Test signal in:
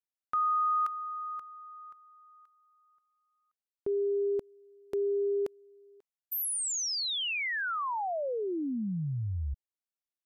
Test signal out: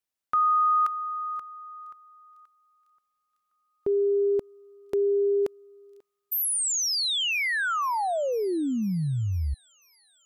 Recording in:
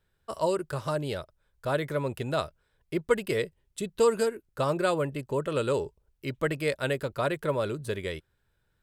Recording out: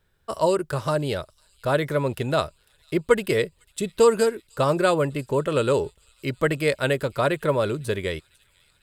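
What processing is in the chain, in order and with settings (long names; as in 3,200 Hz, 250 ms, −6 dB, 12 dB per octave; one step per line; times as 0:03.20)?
delay with a high-pass on its return 500 ms, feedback 71%, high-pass 4,100 Hz, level −21 dB
level +6 dB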